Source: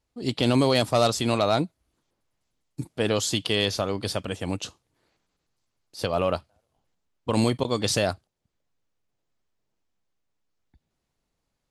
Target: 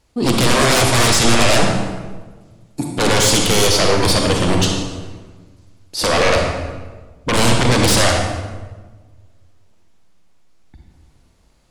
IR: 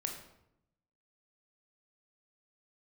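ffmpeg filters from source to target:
-filter_complex "[0:a]asettb=1/sr,asplit=3[a][b][c];[a]atrim=end=1.644[d];[b]atrim=start=1.64:end=2.94,asetpts=PTS-STARTPTS,afade=t=in:d=0.004:c=qsin,afade=t=out:st=1.296:d=0.004:c=qsin,highpass=230[e];[c]atrim=start=2.936[f];[d][e]acrossfade=d=0.004:c1=hsin:c2=qsin[g];[g][f]acrossfade=d=0.004:c1=qsin:c2=hsin,aeval=exprs='0.398*sin(PI/2*7.94*val(0)/0.398)':c=same[h];[1:a]atrim=start_sample=2205,asetrate=22491,aresample=44100[i];[h][i]afir=irnorm=-1:irlink=0,volume=-7dB"

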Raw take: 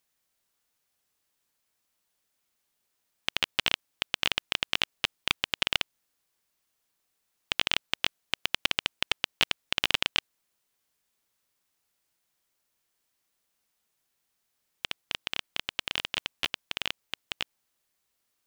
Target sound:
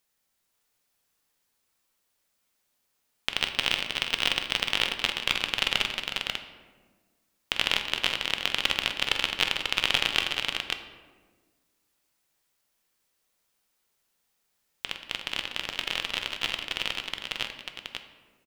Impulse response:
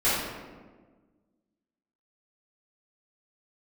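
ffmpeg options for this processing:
-filter_complex "[0:a]asettb=1/sr,asplit=3[a][b][c];[a]atrim=end=3.334[d];[b]atrim=start=3.33:end=4.67,asetpts=PTS-STARTPTS,afade=t=in:d=0.004:c=qsin,afade=t=out:st=1.336:d=0.004:c=qsin,acrusher=bits=4:mode=log:mix=0:aa=0.000001[e];[c]atrim=start=4.666[f];[d][e]acrossfade=d=0.004:c1=hsin:c2=qsin[g];[g][f]acrossfade=d=0.004:c1=qsin:c2=hsin,aecho=1:1:46|183|365|541:0.316|0.211|0.316|0.562,asplit=2[h][i];[1:a]atrim=start_sample=2205[j];[i][j]afir=irnorm=-1:irlink=0,volume=-21dB[k];[h][k]amix=inputs=2:normalize=0"

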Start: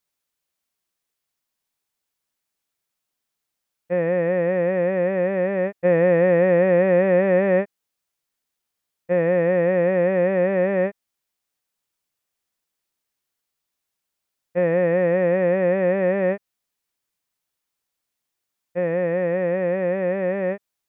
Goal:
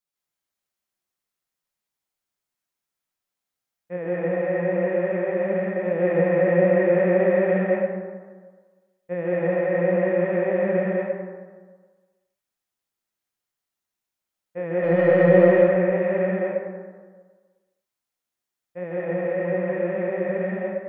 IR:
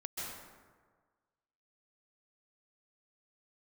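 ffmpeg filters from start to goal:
-filter_complex "[0:a]asplit=3[a][b][c];[a]afade=t=out:st=14.82:d=0.02[d];[b]acontrast=80,afade=t=in:st=14.82:d=0.02,afade=t=out:st=15.48:d=0.02[e];[c]afade=t=in:st=15.48:d=0.02[f];[d][e][f]amix=inputs=3:normalize=0,flanger=delay=4.7:depth=7:regen=57:speed=1.8:shape=sinusoidal[g];[1:a]atrim=start_sample=2205[h];[g][h]afir=irnorm=-1:irlink=0"

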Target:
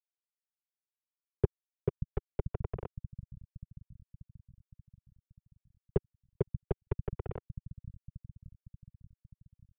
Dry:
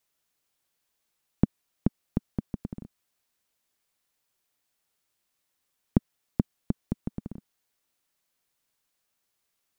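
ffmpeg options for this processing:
-filter_complex "[0:a]asetrate=35002,aresample=44100,atempo=1.25992,areverse,acompressor=mode=upward:threshold=-31dB:ratio=2.5,areverse,acrusher=bits=4:mix=0:aa=0.000001,acrossover=split=130|540[a][b][c];[a]aecho=1:1:583|1166|1749|2332|2915|3498|4081:0.398|0.231|0.134|0.0777|0.0451|0.0261|0.0152[d];[b]aeval=exprs='val(0)*sin(2*PI*230*n/s)':c=same[e];[c]adynamicsmooth=sensitivity=1:basefreq=760[f];[d][e][f]amix=inputs=3:normalize=0,aresample=8000,aresample=44100"

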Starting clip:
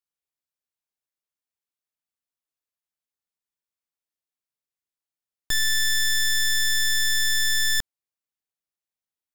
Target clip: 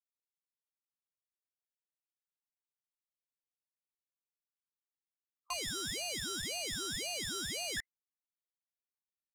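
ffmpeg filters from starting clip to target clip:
-filter_complex "[0:a]alimiter=level_in=1.5dB:limit=-24dB:level=0:latency=1,volume=-1.5dB,afwtdn=0.00891,asettb=1/sr,asplit=3[a][b][c];[a]atrim=end=5.534[d];[b]atrim=start=5.53:end=7.77,asetpts=PTS-STARTPTS,afade=t=in:d=0.004:c=qsin,afade=t=out:st=2.236:d=0.004:c=qsin,highpass=400[e];[c]atrim=start=7.766[f];[d][e]acrossfade=d=0.004:c1=hsin:c2=qsin[g];[g][f]acrossfade=d=0.004:c1=qsin:c2=hsin,aeval=exprs='val(0)*sin(2*PI*1600*n/s+1600*0.35/1.9*sin(2*PI*1.9*n/s))':c=same,volume=-6.5dB"

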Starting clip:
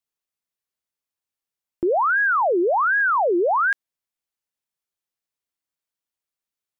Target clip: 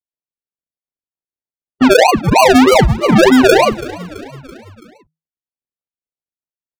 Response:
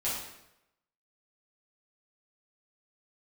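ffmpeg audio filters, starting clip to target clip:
-filter_complex "[0:a]asplit=2[a][b];[b]highpass=f=720:p=1,volume=18dB,asoftclip=type=tanh:threshold=-16dB[c];[a][c]amix=inputs=2:normalize=0,lowpass=f=1.9k:p=1,volume=-6dB,highshelf=f=2.4k:g=7,acrossover=split=100|380|1200[d][e][f][g];[g]acompressor=threshold=-36dB:ratio=12[h];[d][e][f][h]amix=inputs=4:normalize=0,afftfilt=real='hypot(re,im)*cos(PI*b)':imag='0':win_size=1024:overlap=0.75,asetrate=33038,aresample=44100,atempo=1.33484,adynamicsmooth=sensitivity=6:basefreq=2.2k,acrusher=samples=35:mix=1:aa=0.000001:lfo=1:lforange=21:lforate=3.2,afftdn=nr=34:nf=-37,asplit=5[i][j][k][l][m];[j]adelay=332,afreqshift=-40,volume=-20.5dB[n];[k]adelay=664,afreqshift=-80,volume=-25.5dB[o];[l]adelay=996,afreqshift=-120,volume=-30.6dB[p];[m]adelay=1328,afreqshift=-160,volume=-35.6dB[q];[i][n][o][p][q]amix=inputs=5:normalize=0,alimiter=level_in=19.5dB:limit=-1dB:release=50:level=0:latency=1,volume=-1dB"

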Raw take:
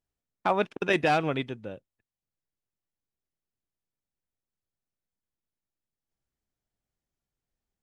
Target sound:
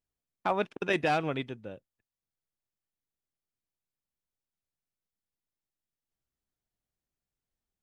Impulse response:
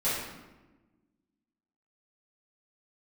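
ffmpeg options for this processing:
-filter_complex "[0:a]asettb=1/sr,asplit=3[a][b][c];[a]atrim=end=0.514[d];[b]atrim=start=0.51:end=1.72,asetpts=PTS-STARTPTS,afade=t=in:d=0.004:c=qsin,afade=t=out:st=1.206:d=0.004:c=qsin,agate=range=-33dB:threshold=-41dB:ratio=3:detection=peak[e];[c]atrim=start=1.716[f];[d][e]acrossfade=d=0.004:c1=hsin:c2=qsin[g];[g][f]acrossfade=d=0.004:c1=qsin:c2=hsin,volume=-3.5dB"

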